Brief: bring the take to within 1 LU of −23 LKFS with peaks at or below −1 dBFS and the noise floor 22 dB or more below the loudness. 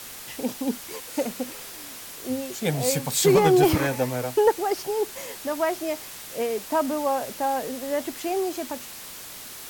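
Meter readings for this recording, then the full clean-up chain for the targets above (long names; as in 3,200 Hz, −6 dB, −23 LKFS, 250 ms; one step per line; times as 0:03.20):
background noise floor −40 dBFS; target noise floor −48 dBFS; integrated loudness −25.5 LKFS; sample peak −8.5 dBFS; target loudness −23.0 LKFS
→ noise reduction from a noise print 8 dB
level +2.5 dB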